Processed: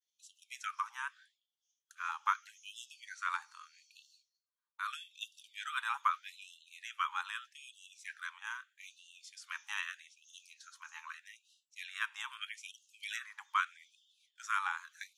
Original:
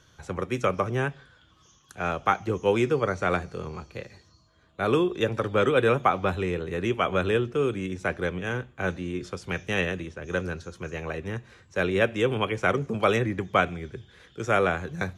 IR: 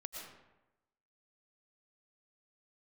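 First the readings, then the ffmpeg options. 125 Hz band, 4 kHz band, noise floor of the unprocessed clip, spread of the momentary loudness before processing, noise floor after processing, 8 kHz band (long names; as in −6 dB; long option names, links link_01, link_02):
below −40 dB, −8.5 dB, −60 dBFS, 13 LU, below −85 dBFS, −4.5 dB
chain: -af "agate=range=-33dB:threshold=-46dB:ratio=3:detection=peak,equalizer=frequency=2300:width=0.99:gain=-7.5,afftfilt=real='re*gte(b*sr/1024,810*pow(2700/810,0.5+0.5*sin(2*PI*0.8*pts/sr)))':imag='im*gte(b*sr/1024,810*pow(2700/810,0.5+0.5*sin(2*PI*0.8*pts/sr)))':win_size=1024:overlap=0.75,volume=-3.5dB"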